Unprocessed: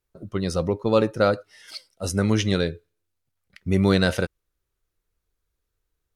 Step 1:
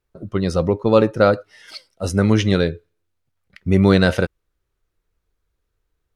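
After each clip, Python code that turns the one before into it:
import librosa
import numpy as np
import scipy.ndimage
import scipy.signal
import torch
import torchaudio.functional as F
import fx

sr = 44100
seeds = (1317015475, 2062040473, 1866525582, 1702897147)

y = fx.high_shelf(x, sr, hz=4600.0, db=-9.0)
y = F.gain(torch.from_numpy(y), 5.5).numpy()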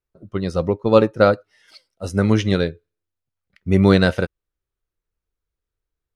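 y = fx.upward_expand(x, sr, threshold_db=-33.0, expansion=1.5)
y = F.gain(torch.from_numpy(y), 1.5).numpy()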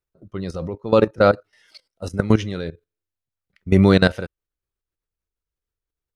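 y = fx.level_steps(x, sr, step_db=15)
y = F.gain(torch.from_numpy(y), 3.0).numpy()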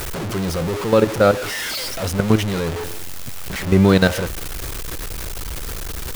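y = x + 0.5 * 10.0 ** (-19.0 / 20.0) * np.sign(x)
y = F.gain(torch.from_numpy(y), -1.0).numpy()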